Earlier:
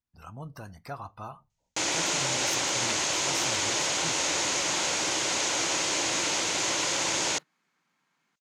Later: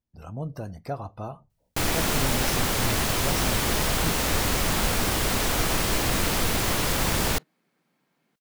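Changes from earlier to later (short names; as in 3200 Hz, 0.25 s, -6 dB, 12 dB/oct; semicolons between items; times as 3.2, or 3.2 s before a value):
first sound: remove speaker cabinet 190–7400 Hz, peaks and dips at 220 Hz -8 dB, 330 Hz +8 dB, 560 Hz +9 dB, 1200 Hz -9 dB, 1700 Hz -5 dB, 6600 Hz +9 dB; master: add resonant low shelf 780 Hz +8 dB, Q 1.5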